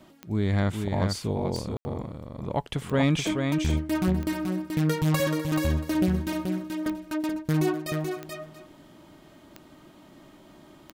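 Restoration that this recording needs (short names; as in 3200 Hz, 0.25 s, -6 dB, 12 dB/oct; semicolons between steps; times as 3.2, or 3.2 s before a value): clip repair -13 dBFS; de-click; room tone fill 1.77–1.85; inverse comb 0.431 s -5 dB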